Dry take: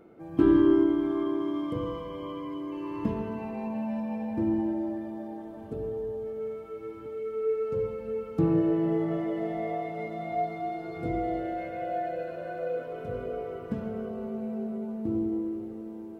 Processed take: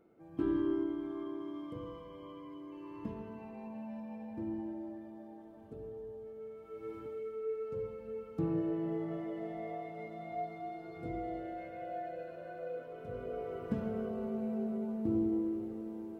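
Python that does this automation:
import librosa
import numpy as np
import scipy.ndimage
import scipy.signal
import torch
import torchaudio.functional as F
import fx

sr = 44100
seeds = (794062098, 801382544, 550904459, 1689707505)

y = fx.gain(x, sr, db=fx.line((6.53, -12.0), (6.95, -2.5), (7.41, -9.5), (12.98, -9.5), (13.67, -2.5)))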